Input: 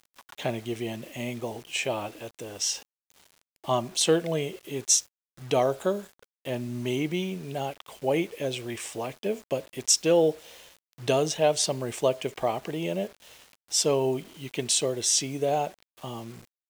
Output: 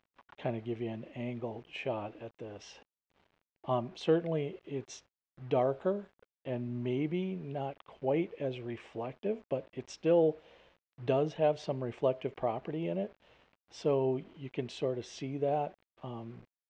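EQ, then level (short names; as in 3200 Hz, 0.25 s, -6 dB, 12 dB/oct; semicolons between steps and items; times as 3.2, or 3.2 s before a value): tape spacing loss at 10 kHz 42 dB; bell 2600 Hz +2.5 dB 0.77 oct; -3.0 dB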